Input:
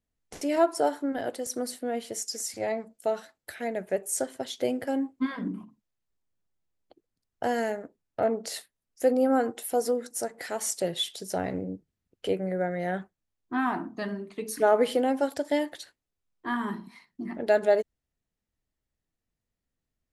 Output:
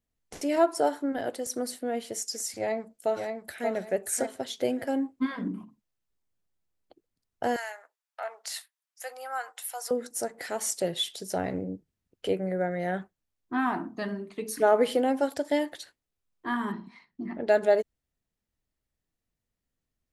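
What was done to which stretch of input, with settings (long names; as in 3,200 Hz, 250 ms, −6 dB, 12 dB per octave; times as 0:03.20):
0:02.58–0:03.68: delay throw 580 ms, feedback 25%, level −4.5 dB
0:07.56–0:09.91: high-pass filter 890 Hz 24 dB per octave
0:16.72–0:17.49: high-frequency loss of the air 110 metres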